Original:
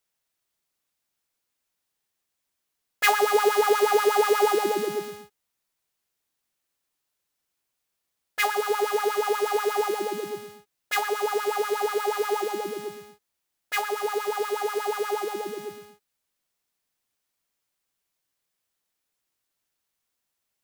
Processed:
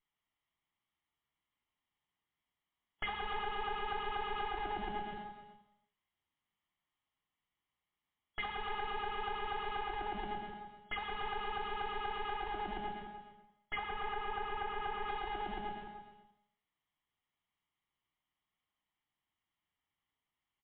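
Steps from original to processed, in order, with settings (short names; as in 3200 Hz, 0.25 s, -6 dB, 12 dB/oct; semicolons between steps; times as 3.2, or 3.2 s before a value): minimum comb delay 0.98 ms; 13–15.09 LPF 2900 Hz 12 dB/oct; compressor 6:1, threshold -34 dBFS, peak gain reduction 16.5 dB; outdoor echo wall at 51 m, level -12 dB; non-linear reverb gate 0.4 s falling, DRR 5.5 dB; gain -2.5 dB; MP3 40 kbps 8000 Hz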